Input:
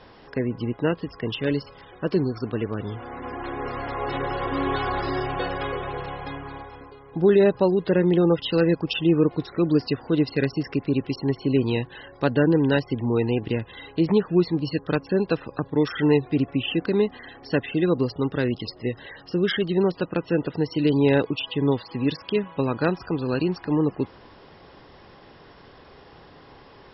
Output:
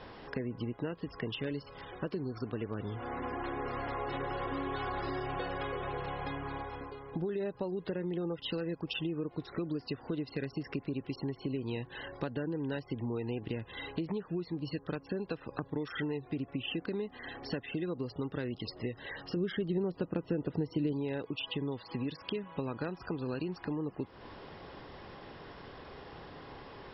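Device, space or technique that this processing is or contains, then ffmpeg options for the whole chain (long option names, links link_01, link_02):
serial compression, leveller first: -filter_complex "[0:a]lowpass=5000,acompressor=threshold=-22dB:ratio=2,acompressor=threshold=-35dB:ratio=4,asettb=1/sr,asplit=3[link_01][link_02][link_03];[link_01]atrim=end=19.364[link_04];[link_02]atrim=start=19.36:end=20.93,asetpts=PTS-STARTPTS,afade=type=in:duration=0.004:curve=qsin,afade=type=out:start_time=1.566:duration=0.004:curve=qsin,tiltshelf=frequency=820:gain=5[link_05];[link_03]atrim=start=20.926[link_06];[link_04][link_05]acrossfade=duration=0.004:curve1=hsin:curve2=qsin[link_07];[link_07][link_06]acrossfade=duration=0.004:curve1=qsin:curve2=hsin"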